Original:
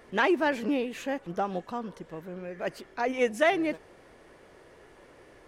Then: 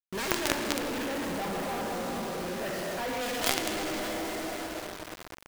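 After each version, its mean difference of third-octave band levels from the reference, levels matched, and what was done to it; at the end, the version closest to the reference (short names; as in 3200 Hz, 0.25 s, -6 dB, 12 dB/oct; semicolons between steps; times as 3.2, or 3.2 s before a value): 17.0 dB: wrapped overs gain 17.5 dB; LPF 7300 Hz 12 dB/oct; plate-style reverb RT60 4.1 s, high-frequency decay 0.6×, DRR -3 dB; companded quantiser 2-bit; gain -7 dB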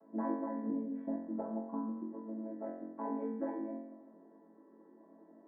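11.0 dB: chord vocoder major triad, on A3; Chebyshev low-pass 1000 Hz, order 3; compressor, threshold -33 dBFS, peak gain reduction 13.5 dB; flutter echo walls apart 3.8 m, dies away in 0.83 s; gain -3.5 dB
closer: second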